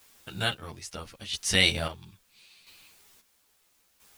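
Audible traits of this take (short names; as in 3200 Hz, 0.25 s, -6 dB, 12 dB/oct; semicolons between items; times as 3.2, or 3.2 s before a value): a quantiser's noise floor 10-bit, dither triangular; chopped level 0.75 Hz, depth 65%, duty 40%; a shimmering, thickened sound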